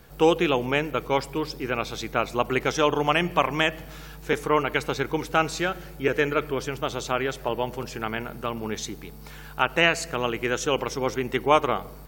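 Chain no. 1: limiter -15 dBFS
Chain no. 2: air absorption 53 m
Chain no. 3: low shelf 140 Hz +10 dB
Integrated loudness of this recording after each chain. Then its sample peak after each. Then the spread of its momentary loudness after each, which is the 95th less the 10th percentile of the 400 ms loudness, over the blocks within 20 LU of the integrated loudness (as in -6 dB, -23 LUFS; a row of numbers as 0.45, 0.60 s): -29.0, -25.5, -24.5 LUFS; -15.0, -5.0, -4.5 dBFS; 6, 11, 9 LU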